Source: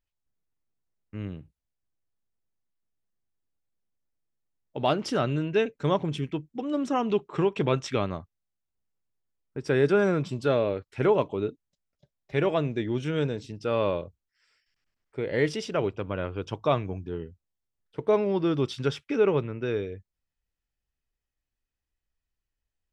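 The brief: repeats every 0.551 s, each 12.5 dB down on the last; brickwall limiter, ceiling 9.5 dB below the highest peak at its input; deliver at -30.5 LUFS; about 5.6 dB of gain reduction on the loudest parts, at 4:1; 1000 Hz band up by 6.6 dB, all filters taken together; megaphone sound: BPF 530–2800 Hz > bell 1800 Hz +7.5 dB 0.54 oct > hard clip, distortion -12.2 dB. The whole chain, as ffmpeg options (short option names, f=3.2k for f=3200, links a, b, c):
-af "equalizer=f=1k:t=o:g=8,acompressor=threshold=-22dB:ratio=4,alimiter=limit=-21dB:level=0:latency=1,highpass=530,lowpass=2.8k,equalizer=f=1.8k:t=o:w=0.54:g=7.5,aecho=1:1:551|1102|1653:0.237|0.0569|0.0137,asoftclip=type=hard:threshold=-29.5dB,volume=7.5dB"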